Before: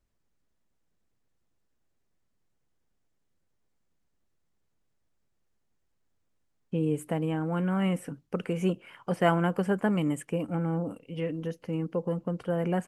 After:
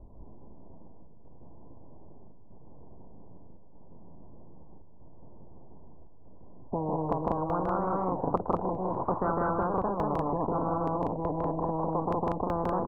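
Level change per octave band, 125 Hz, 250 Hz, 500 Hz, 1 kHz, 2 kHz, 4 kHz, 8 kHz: -4.0 dB, -3.5 dB, +0.5 dB, +7.0 dB, -8.0 dB, under -15 dB, under -20 dB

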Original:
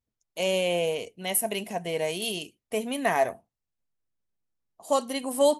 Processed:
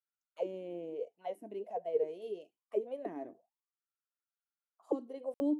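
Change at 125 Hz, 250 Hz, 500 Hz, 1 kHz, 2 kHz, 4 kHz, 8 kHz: under -15 dB, -5.5 dB, -10.5 dB, -16.0 dB, -29.0 dB, under -30 dB, under -35 dB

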